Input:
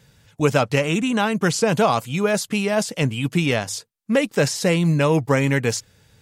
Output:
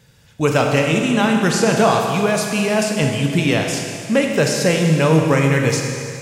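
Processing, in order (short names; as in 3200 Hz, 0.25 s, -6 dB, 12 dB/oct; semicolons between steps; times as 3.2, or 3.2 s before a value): Schroeder reverb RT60 2.3 s, combs from 25 ms, DRR 1.5 dB; gain +1.5 dB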